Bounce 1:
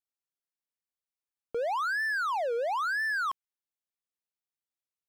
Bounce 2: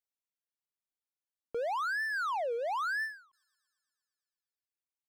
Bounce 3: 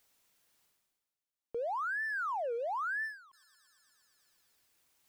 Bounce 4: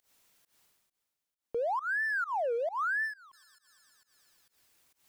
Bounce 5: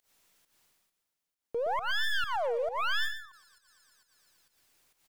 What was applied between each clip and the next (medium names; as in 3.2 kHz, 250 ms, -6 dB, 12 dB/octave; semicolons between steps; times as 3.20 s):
feedback echo behind a high-pass 117 ms, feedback 70%, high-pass 5.6 kHz, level -14 dB; reverb removal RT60 1.5 s; endings held to a fixed fall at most 140 dB/s; trim -3 dB
reverse; upward compressor, threshold -54 dBFS; reverse; saturation -30 dBFS, distortion -20 dB
volume shaper 134 bpm, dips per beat 1, -22 dB, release 151 ms; trim +4.5 dB
tracing distortion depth 0.15 ms; feedback delay 119 ms, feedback 16%, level -9.5 dB